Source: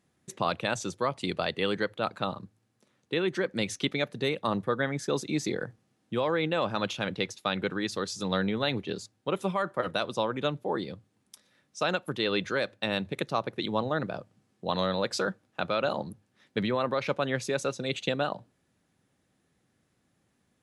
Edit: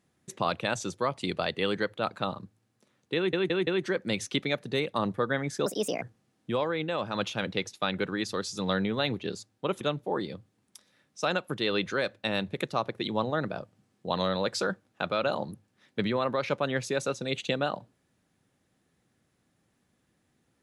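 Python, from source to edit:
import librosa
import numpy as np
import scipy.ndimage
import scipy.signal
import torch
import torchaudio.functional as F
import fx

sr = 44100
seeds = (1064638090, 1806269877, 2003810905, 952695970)

y = fx.edit(x, sr, fx.stutter(start_s=3.16, slice_s=0.17, count=4),
    fx.speed_span(start_s=5.15, length_s=0.5, speed=1.4),
    fx.clip_gain(start_s=6.27, length_s=0.51, db=-3.0),
    fx.cut(start_s=9.44, length_s=0.95), tone=tone)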